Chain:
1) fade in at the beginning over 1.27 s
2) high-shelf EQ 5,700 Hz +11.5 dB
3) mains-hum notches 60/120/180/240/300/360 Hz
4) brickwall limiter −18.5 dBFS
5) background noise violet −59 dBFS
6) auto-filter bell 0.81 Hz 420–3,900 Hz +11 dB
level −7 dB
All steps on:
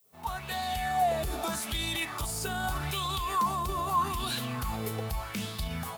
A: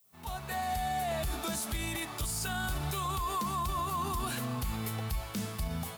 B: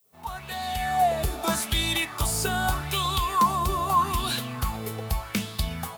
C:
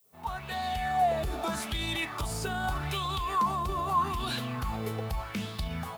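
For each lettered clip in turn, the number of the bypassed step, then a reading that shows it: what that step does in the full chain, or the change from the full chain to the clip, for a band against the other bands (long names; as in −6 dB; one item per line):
6, 4 kHz band −3.5 dB
4, average gain reduction 3.5 dB
2, 8 kHz band −6.0 dB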